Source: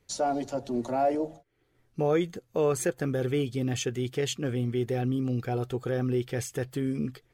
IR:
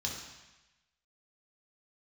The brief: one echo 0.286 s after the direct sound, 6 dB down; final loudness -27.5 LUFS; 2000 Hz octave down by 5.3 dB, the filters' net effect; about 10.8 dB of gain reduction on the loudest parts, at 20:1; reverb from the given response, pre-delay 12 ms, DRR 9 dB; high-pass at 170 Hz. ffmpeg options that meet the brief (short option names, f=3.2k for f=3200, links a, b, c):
-filter_complex "[0:a]highpass=170,equalizer=f=2k:t=o:g=-7,acompressor=threshold=-31dB:ratio=20,aecho=1:1:286:0.501,asplit=2[a][b];[1:a]atrim=start_sample=2205,adelay=12[c];[b][c]afir=irnorm=-1:irlink=0,volume=-11.5dB[d];[a][d]amix=inputs=2:normalize=0,volume=8dB"